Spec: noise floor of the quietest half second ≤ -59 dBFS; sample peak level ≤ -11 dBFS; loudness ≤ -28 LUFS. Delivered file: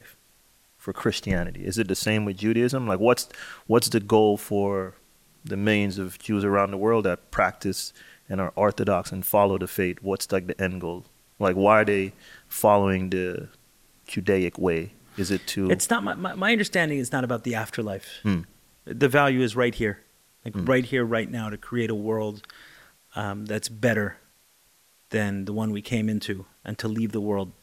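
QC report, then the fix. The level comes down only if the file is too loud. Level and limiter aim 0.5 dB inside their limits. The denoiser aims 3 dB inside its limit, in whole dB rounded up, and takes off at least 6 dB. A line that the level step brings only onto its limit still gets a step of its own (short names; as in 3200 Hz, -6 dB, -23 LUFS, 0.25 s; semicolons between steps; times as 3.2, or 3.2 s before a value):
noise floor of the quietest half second -61 dBFS: OK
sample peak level -4.0 dBFS: fail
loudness -25.0 LUFS: fail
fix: gain -3.5 dB; limiter -11.5 dBFS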